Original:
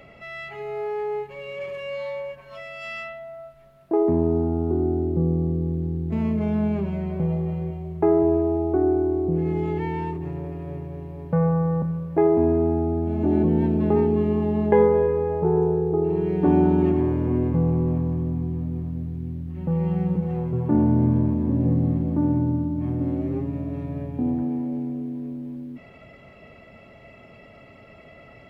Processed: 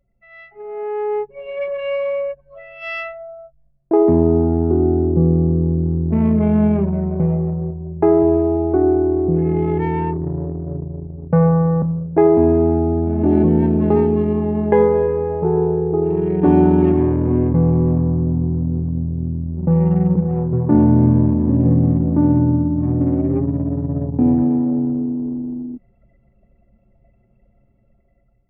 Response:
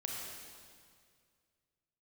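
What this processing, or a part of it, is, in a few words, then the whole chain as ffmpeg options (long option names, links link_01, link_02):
voice memo with heavy noise removal: -af "anlmdn=39.8,dynaudnorm=framelen=430:gausssize=5:maxgain=11.5dB,volume=-1dB"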